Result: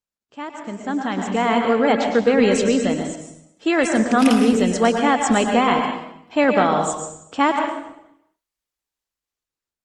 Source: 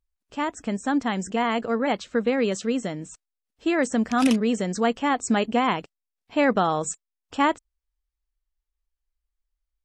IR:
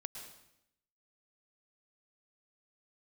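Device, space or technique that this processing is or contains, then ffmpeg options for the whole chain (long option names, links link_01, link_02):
far-field microphone of a smart speaker: -filter_complex "[0:a]asplit=3[link_01][link_02][link_03];[link_01]afade=type=out:start_time=2.98:duration=0.02[link_04];[link_02]highpass=frequency=240:poles=1,afade=type=in:start_time=2.98:duration=0.02,afade=type=out:start_time=3.98:duration=0.02[link_05];[link_03]afade=type=in:start_time=3.98:duration=0.02[link_06];[link_04][link_05][link_06]amix=inputs=3:normalize=0[link_07];[1:a]atrim=start_sample=2205[link_08];[link_07][link_08]afir=irnorm=-1:irlink=0,highpass=160,dynaudnorm=framelen=280:gausssize=9:maxgain=14.5dB,volume=-1dB" -ar 48000 -c:a libopus -b:a 20k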